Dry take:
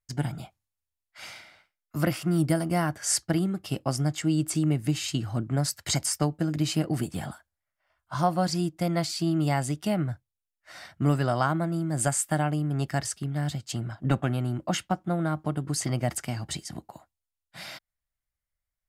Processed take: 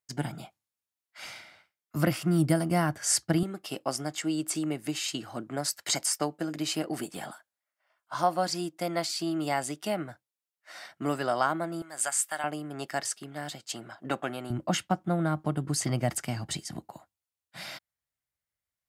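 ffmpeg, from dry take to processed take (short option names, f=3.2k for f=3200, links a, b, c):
-af "asetnsamples=n=441:p=0,asendcmd='1.25 highpass f 86;3.43 highpass f 330;11.82 highpass f 970;12.44 highpass f 380;14.5 highpass f 98',highpass=180"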